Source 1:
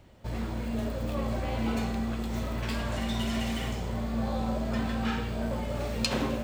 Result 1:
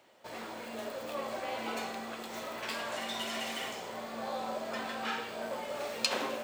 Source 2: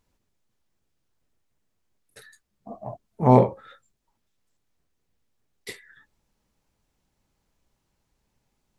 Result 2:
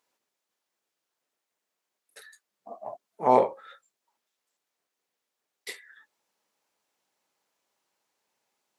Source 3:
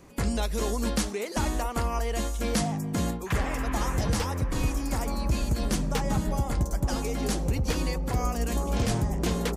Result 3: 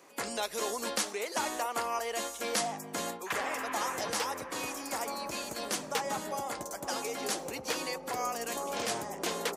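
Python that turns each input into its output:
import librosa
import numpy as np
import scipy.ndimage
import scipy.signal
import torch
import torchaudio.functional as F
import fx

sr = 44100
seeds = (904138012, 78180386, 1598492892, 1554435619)

y = scipy.signal.sosfilt(scipy.signal.butter(2, 500.0, 'highpass', fs=sr, output='sos'), x)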